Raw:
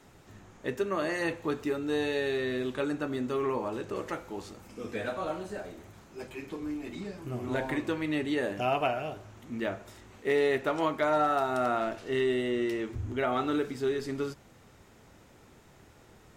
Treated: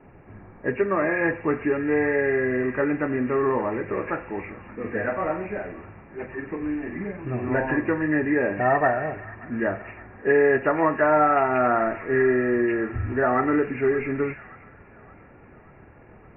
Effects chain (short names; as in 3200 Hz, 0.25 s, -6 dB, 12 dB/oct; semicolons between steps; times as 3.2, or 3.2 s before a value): nonlinear frequency compression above 1600 Hz 4:1; thin delay 0.574 s, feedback 64%, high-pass 1700 Hz, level -12 dB; low-pass opened by the level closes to 1000 Hz, open at -26 dBFS; gain +7.5 dB